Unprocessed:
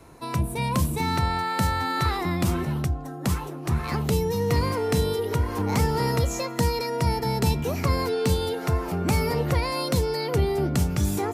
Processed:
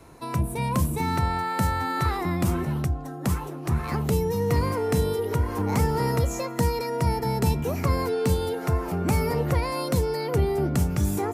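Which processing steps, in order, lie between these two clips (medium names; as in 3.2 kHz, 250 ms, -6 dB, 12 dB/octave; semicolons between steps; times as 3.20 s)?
dynamic bell 3.9 kHz, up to -6 dB, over -46 dBFS, Q 0.9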